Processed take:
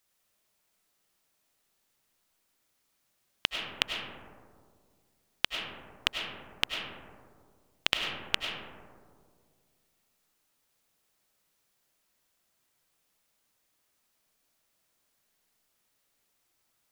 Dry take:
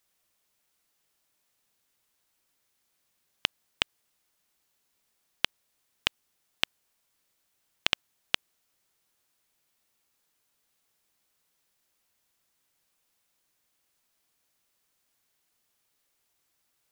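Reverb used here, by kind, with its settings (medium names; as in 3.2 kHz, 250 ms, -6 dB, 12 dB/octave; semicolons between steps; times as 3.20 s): algorithmic reverb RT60 2 s, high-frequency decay 0.25×, pre-delay 60 ms, DRR 1.5 dB; trim -1 dB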